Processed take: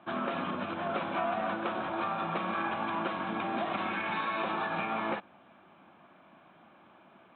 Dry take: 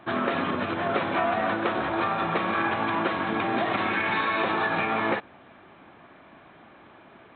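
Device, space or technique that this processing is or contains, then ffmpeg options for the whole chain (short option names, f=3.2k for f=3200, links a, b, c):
guitar cabinet: -af "highpass=110,equalizer=f=120:t=q:w=4:g=-7,equalizer=f=190:t=q:w=4:g=3,equalizer=f=280:t=q:w=4:g=-3,equalizer=f=430:t=q:w=4:g=-7,equalizer=f=1.9k:t=q:w=4:g=-8,lowpass=f=3.7k:w=0.5412,lowpass=f=3.7k:w=1.3066,volume=-5.5dB"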